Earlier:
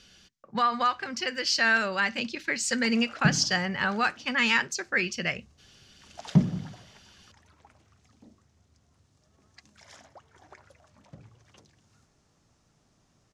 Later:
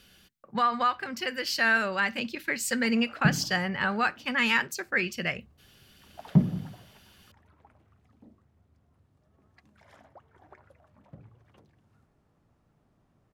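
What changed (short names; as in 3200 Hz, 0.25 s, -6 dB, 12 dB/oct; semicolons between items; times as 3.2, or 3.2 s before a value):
background: add LPF 1400 Hz 6 dB/oct; master: remove synth low-pass 6200 Hz, resonance Q 2.2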